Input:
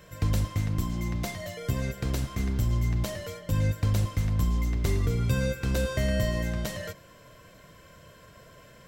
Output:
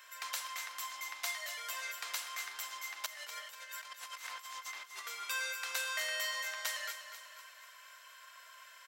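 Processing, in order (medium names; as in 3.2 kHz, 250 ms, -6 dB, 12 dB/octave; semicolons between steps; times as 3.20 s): high-pass 1 kHz 24 dB/octave; 3.06–5.07 s: compressor with a negative ratio -48 dBFS, ratio -0.5; feedback delay 245 ms, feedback 51%, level -10 dB; trim +1 dB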